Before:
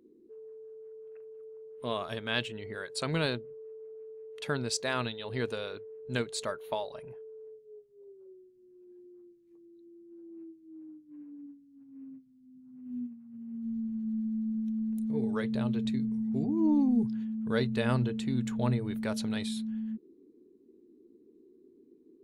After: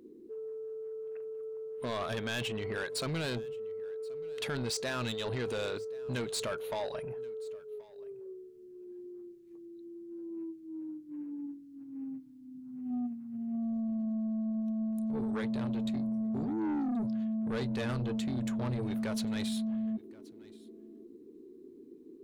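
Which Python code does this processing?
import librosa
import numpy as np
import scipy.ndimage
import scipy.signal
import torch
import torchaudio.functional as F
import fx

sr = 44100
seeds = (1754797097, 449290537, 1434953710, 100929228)

p1 = fx.over_compress(x, sr, threshold_db=-37.0, ratio=-1.0)
p2 = x + F.gain(torch.from_numpy(p1), 0.5).numpy()
p3 = 10.0 ** (-27.5 / 20.0) * np.tanh(p2 / 10.0 ** (-27.5 / 20.0))
p4 = p3 + 10.0 ** (-23.5 / 20.0) * np.pad(p3, (int(1078 * sr / 1000.0), 0))[:len(p3)]
y = F.gain(torch.from_numpy(p4), -2.0).numpy()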